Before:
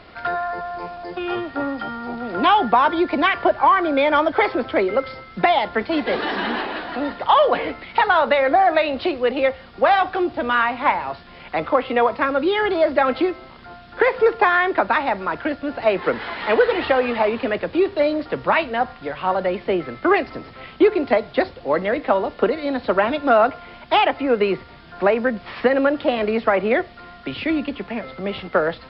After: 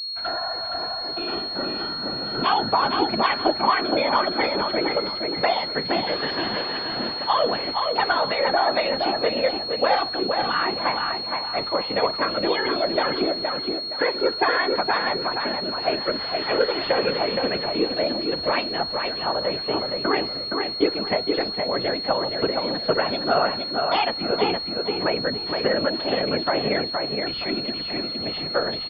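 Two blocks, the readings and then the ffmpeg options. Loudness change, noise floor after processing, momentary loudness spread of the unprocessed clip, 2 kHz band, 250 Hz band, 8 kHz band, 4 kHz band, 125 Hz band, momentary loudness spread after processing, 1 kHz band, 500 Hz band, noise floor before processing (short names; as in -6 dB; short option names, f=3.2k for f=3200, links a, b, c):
-3.0 dB, -30 dBFS, 11 LU, -4.5 dB, -4.5 dB, n/a, +8.5 dB, +0.5 dB, 5 LU, -4.5 dB, -4.5 dB, -43 dBFS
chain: -filter_complex "[0:a]agate=range=-33dB:threshold=-33dB:ratio=3:detection=peak,afftfilt=real='hypot(re,im)*cos(2*PI*random(0))':imag='hypot(re,im)*sin(2*PI*random(1))':win_size=512:overlap=0.75,asplit=2[a][b];[b]adelay=468,lowpass=f=4.1k:p=1,volume=-4dB,asplit=2[c][d];[d]adelay=468,lowpass=f=4.1k:p=1,volume=0.33,asplit=2[e][f];[f]adelay=468,lowpass=f=4.1k:p=1,volume=0.33,asplit=2[g][h];[h]adelay=468,lowpass=f=4.1k:p=1,volume=0.33[i];[a][c][e][g][i]amix=inputs=5:normalize=0,aeval=exprs='val(0)+0.0398*sin(2*PI*4300*n/s)':c=same"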